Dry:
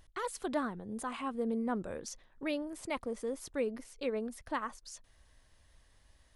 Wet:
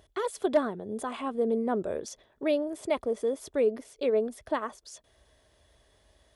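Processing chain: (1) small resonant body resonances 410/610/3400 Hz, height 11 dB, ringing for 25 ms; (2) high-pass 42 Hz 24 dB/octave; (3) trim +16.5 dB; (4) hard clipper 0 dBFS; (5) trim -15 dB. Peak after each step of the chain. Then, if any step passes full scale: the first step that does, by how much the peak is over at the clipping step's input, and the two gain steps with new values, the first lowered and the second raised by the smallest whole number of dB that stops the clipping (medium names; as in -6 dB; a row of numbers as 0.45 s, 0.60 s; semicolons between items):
-12.5 dBFS, -12.5 dBFS, +4.0 dBFS, 0.0 dBFS, -15.0 dBFS; step 3, 4.0 dB; step 3 +12.5 dB, step 5 -11 dB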